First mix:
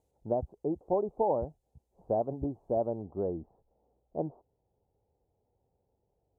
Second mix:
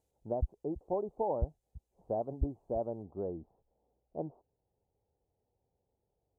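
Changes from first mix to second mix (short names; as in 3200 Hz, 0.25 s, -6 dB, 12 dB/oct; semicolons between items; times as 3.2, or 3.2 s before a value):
speech -5.0 dB; background: remove HPF 110 Hz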